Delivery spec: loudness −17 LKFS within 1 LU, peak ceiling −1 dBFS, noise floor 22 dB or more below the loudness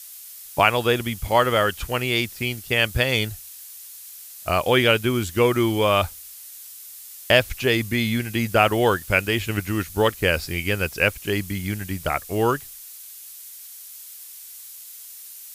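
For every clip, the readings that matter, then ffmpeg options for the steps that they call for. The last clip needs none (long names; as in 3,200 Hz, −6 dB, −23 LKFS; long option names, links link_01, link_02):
background noise floor −41 dBFS; target noise floor −44 dBFS; integrated loudness −21.5 LKFS; sample peak −2.0 dBFS; target loudness −17.0 LKFS
→ -af "afftdn=noise_reduction=6:noise_floor=-41"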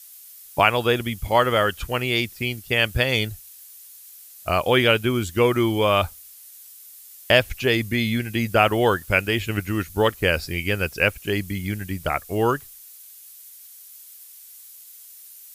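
background noise floor −45 dBFS; integrated loudness −21.5 LKFS; sample peak −2.0 dBFS; target loudness −17.0 LKFS
→ -af "volume=4.5dB,alimiter=limit=-1dB:level=0:latency=1"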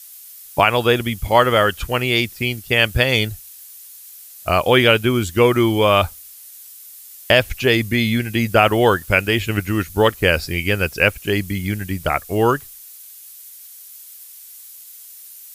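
integrated loudness −17.5 LKFS; sample peak −1.0 dBFS; background noise floor −41 dBFS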